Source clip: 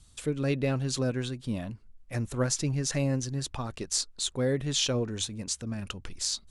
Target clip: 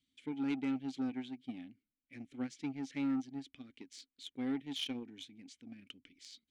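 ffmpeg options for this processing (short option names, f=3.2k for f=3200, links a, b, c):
-filter_complex "[0:a]asplit=3[a][b][c];[a]bandpass=f=270:t=q:w=8,volume=0dB[d];[b]bandpass=f=2.29k:t=q:w=8,volume=-6dB[e];[c]bandpass=f=3.01k:t=q:w=8,volume=-9dB[f];[d][e][f]amix=inputs=3:normalize=0,aeval=exprs='0.0501*(cos(1*acos(clip(val(0)/0.0501,-1,1)))-cos(1*PI/2))+0.00316*(cos(7*acos(clip(val(0)/0.0501,-1,1)))-cos(7*PI/2))':c=same,lowshelf=f=430:g=-5.5,volume=3dB"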